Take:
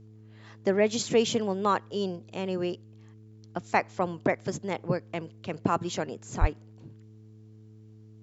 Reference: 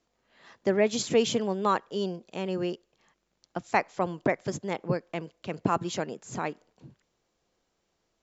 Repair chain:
hum removal 108.3 Hz, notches 4
high-pass at the plosives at 0:06.40

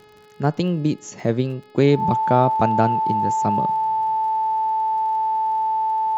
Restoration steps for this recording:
click removal
hum removal 422.6 Hz, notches 12
notch filter 880 Hz, Q 30

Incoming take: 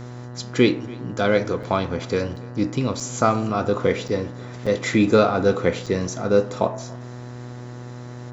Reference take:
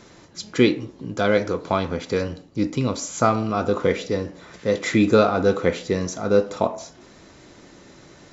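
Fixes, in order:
hum removal 122.5 Hz, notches 16
repair the gap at 0:01.63/0:02.36/0:03.00/0:04.08/0:04.66/0:05.86, 5.1 ms
echo removal 283 ms −22.5 dB

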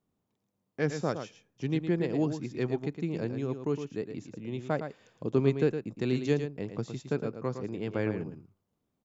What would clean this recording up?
echo removal 112 ms −8.5 dB

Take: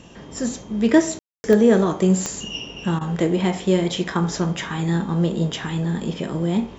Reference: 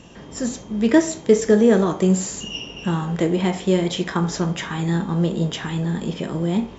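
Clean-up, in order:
click removal
ambience match 0:01.19–0:01.44
repair the gap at 0:02.99, 19 ms

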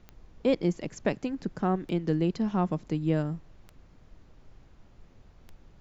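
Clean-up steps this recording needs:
click removal
noise reduction from a noise print 19 dB

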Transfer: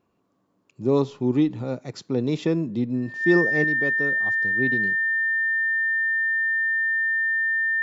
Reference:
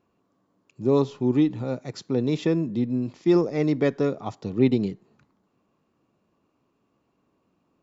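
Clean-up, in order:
notch filter 1,800 Hz, Q 30
level 0 dB, from 0:03.64 +7.5 dB

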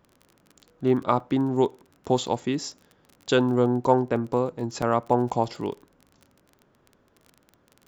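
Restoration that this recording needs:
click removal
repair the gap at 0:01.20/0:04.82, 3.6 ms

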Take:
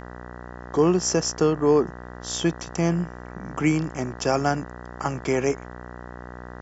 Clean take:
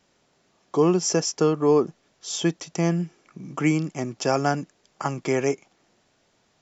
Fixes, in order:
hum removal 60.9 Hz, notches 32

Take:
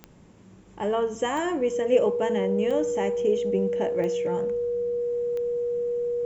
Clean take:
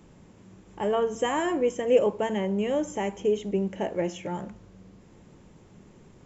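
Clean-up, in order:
click removal
notch filter 480 Hz, Q 30

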